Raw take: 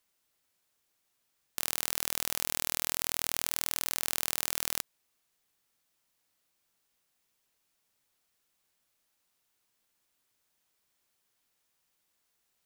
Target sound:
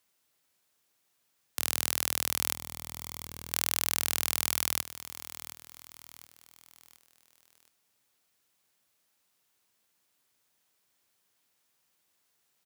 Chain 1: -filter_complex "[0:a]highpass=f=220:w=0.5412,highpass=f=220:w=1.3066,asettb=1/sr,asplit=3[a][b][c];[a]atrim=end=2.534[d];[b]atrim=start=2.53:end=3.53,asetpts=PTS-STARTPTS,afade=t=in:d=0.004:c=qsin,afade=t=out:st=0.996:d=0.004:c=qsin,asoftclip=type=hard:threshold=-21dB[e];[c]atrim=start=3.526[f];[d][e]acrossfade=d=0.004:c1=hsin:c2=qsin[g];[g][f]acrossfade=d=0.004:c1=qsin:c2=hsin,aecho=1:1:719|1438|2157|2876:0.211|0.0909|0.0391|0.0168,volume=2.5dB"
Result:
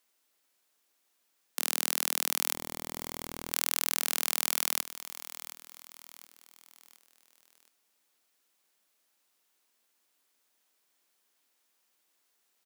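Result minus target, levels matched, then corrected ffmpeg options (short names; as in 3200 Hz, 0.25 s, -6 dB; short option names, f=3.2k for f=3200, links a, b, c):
125 Hz band -6.5 dB
-filter_complex "[0:a]highpass=f=71:w=0.5412,highpass=f=71:w=1.3066,asettb=1/sr,asplit=3[a][b][c];[a]atrim=end=2.534[d];[b]atrim=start=2.53:end=3.53,asetpts=PTS-STARTPTS,afade=t=in:d=0.004:c=qsin,afade=t=out:st=0.996:d=0.004:c=qsin,asoftclip=type=hard:threshold=-21dB[e];[c]atrim=start=3.526[f];[d][e]acrossfade=d=0.004:c1=hsin:c2=qsin[g];[g][f]acrossfade=d=0.004:c1=qsin:c2=hsin,aecho=1:1:719|1438|2157|2876:0.211|0.0909|0.0391|0.0168,volume=2.5dB"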